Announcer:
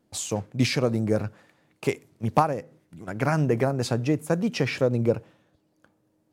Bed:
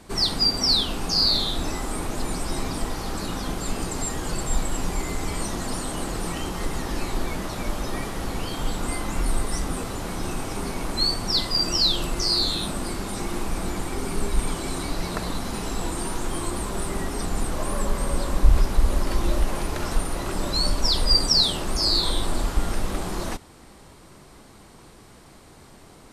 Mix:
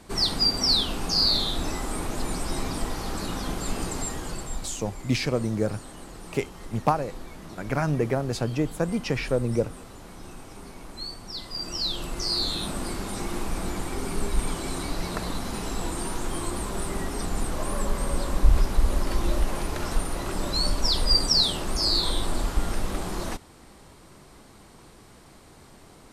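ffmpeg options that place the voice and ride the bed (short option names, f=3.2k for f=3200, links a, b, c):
-filter_complex "[0:a]adelay=4500,volume=-2dB[a];[1:a]volume=10dB,afade=t=out:st=3.89:d=0.85:silence=0.251189,afade=t=in:st=11.37:d=1.43:silence=0.266073[b];[a][b]amix=inputs=2:normalize=0"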